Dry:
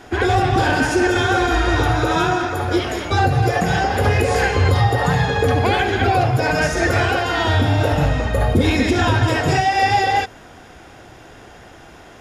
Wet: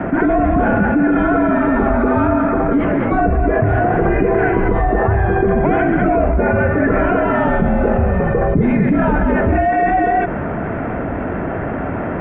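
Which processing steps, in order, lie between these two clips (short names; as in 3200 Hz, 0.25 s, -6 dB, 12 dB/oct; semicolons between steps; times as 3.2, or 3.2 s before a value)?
tilt -3 dB/oct; mistuned SSB -68 Hz 150–2300 Hz; fast leveller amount 70%; gain -3.5 dB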